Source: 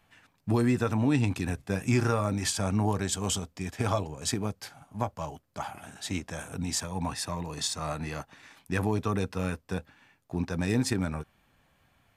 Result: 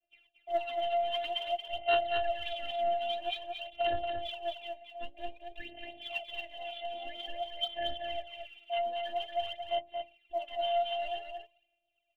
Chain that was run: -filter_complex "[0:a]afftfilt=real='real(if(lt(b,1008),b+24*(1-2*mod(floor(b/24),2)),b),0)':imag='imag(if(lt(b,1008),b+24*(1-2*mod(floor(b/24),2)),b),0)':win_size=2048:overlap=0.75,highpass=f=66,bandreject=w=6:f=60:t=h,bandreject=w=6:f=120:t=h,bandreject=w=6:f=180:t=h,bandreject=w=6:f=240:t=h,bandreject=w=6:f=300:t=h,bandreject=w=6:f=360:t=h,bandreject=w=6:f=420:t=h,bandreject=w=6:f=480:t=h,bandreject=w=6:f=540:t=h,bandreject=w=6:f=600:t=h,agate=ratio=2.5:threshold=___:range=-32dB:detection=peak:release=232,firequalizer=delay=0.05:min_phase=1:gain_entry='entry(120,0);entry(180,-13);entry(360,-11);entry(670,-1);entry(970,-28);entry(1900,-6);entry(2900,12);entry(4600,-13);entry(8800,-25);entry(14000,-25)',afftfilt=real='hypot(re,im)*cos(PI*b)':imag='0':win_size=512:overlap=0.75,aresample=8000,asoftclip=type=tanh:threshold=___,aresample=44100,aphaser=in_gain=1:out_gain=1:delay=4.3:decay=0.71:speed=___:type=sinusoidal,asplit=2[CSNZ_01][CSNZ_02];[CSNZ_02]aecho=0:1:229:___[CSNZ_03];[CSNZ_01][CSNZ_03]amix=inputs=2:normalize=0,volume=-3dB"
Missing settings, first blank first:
-54dB, -27.5dB, 0.51, 0.531